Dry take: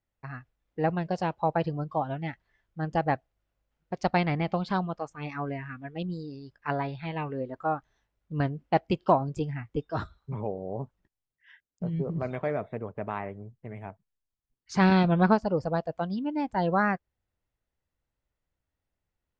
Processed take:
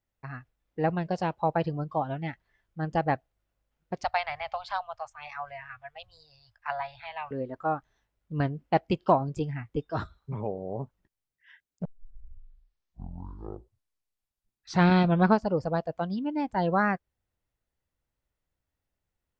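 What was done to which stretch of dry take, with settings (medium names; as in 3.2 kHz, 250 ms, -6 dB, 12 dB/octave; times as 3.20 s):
4.04–7.31 s: elliptic band-stop 100–670 Hz
11.85 s: tape start 3.18 s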